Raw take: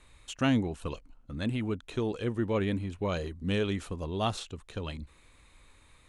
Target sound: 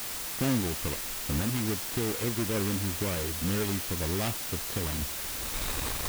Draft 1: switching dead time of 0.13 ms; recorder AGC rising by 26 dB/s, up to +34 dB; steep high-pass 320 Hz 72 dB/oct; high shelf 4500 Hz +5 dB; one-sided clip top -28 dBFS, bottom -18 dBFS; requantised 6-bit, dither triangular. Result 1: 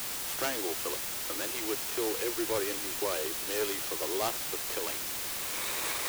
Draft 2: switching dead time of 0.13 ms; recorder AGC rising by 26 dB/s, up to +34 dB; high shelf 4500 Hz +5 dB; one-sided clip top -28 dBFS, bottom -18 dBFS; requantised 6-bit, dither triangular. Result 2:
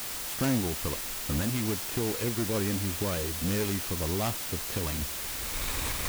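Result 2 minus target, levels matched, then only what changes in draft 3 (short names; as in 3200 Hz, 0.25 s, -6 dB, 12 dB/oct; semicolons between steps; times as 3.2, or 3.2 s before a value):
switching dead time: distortion -5 dB
change: switching dead time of 0.32 ms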